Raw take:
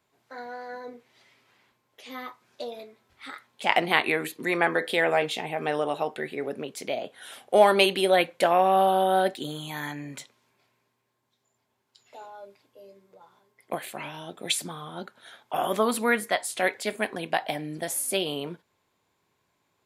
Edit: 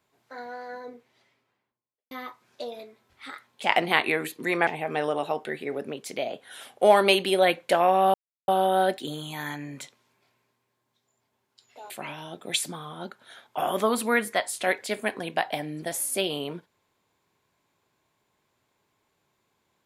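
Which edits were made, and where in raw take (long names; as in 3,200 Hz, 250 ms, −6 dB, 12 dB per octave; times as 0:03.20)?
0:00.65–0:02.11: fade out and dull
0:04.67–0:05.38: remove
0:08.85: splice in silence 0.34 s
0:12.27–0:13.86: remove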